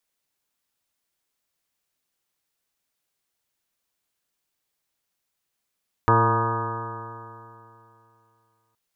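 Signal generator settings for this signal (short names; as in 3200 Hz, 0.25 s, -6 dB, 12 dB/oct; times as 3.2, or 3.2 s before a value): stretched partials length 2.67 s, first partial 112 Hz, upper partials -10/-6/-4/-12/-11/-10/1/-7/0.5/-19/-12.5/-13.5 dB, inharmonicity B 0.002, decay 2.78 s, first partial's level -19.5 dB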